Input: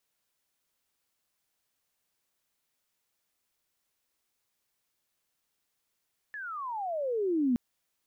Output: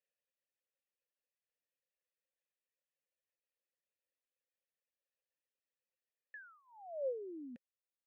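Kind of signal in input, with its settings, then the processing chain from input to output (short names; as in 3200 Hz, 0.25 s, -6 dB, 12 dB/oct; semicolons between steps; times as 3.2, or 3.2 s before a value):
gliding synth tone sine, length 1.22 s, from 1760 Hz, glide -35 st, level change +14.5 dB, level -22.5 dB
reverb removal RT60 1.6 s; vowel filter e; dynamic EQ 450 Hz, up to -4 dB, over -47 dBFS, Q 2.5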